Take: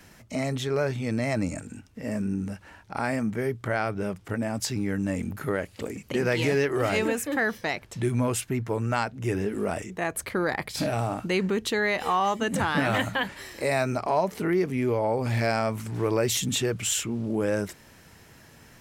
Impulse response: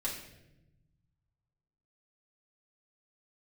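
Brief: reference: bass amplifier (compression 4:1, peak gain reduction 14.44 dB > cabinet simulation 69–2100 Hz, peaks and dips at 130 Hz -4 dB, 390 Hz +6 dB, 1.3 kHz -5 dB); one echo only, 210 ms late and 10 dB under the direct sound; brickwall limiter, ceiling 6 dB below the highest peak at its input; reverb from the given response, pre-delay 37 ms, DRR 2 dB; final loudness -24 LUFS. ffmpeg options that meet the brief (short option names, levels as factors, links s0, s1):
-filter_complex "[0:a]alimiter=limit=0.126:level=0:latency=1,aecho=1:1:210:0.316,asplit=2[s0][s1];[1:a]atrim=start_sample=2205,adelay=37[s2];[s1][s2]afir=irnorm=-1:irlink=0,volume=0.596[s3];[s0][s3]amix=inputs=2:normalize=0,acompressor=threshold=0.0178:ratio=4,highpass=f=69:w=0.5412,highpass=f=69:w=1.3066,equalizer=f=130:t=q:w=4:g=-4,equalizer=f=390:t=q:w=4:g=6,equalizer=f=1300:t=q:w=4:g=-5,lowpass=f=2100:w=0.5412,lowpass=f=2100:w=1.3066,volume=4.22"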